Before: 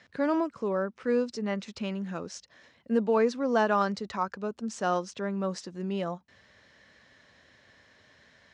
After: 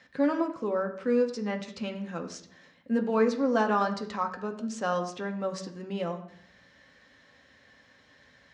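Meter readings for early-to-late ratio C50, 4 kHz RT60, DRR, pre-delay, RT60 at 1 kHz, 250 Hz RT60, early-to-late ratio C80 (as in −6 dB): 10.5 dB, 0.50 s, 3.0 dB, 4 ms, 0.60 s, 0.85 s, 13.5 dB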